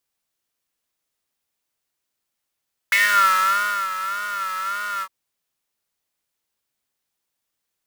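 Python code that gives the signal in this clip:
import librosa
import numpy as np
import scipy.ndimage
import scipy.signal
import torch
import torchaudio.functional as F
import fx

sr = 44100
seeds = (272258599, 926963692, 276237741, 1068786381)

y = fx.sub_patch_vibrato(sr, seeds[0], note=55, wave='square', wave2='square', interval_st=12, detune_cents=16, level2_db=-11.5, sub_db=-15.0, noise_db=-10.0, kind='highpass', cutoff_hz=1100.0, q=9.6, env_oct=1.0, env_decay_s=0.27, env_sustain_pct=30, attack_ms=2.0, decay_s=0.96, sustain_db=-12.5, release_s=0.06, note_s=2.1, lfo_hz=1.7, vibrato_cents=86)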